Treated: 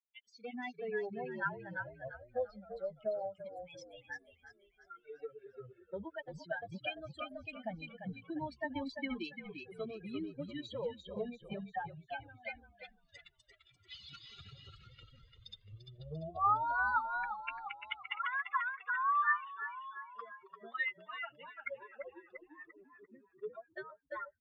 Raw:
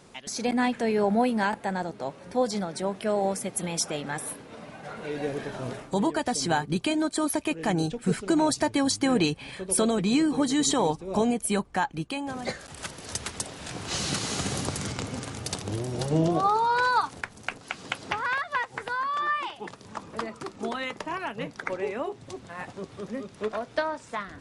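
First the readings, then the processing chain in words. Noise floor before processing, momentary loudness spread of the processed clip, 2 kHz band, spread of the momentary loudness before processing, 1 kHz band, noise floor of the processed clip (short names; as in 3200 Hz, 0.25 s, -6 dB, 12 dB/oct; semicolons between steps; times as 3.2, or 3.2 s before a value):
-50 dBFS, 21 LU, -6.5 dB, 13 LU, -9.5 dB, -72 dBFS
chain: per-bin expansion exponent 3; compressor 2.5:1, threshold -49 dBFS, peak gain reduction 17.5 dB; speaker cabinet 230–3200 Hz, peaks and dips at 370 Hz -6 dB, 1300 Hz +8 dB, 1800 Hz +5 dB; on a send: frequency-shifting echo 0.344 s, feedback 42%, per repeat -45 Hz, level -7 dB; on the sum: cascading flanger rising 0.22 Hz; gain +11.5 dB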